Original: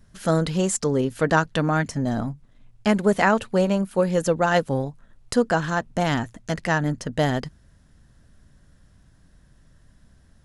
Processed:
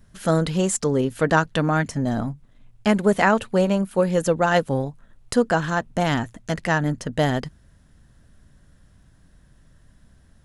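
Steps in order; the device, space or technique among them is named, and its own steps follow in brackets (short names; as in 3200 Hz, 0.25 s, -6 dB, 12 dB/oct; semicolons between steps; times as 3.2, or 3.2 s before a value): exciter from parts (in parallel at -13 dB: HPF 2800 Hz + soft clip -19 dBFS, distortion -19 dB + HPF 3900 Hz 24 dB/oct); on the sum: gain +1 dB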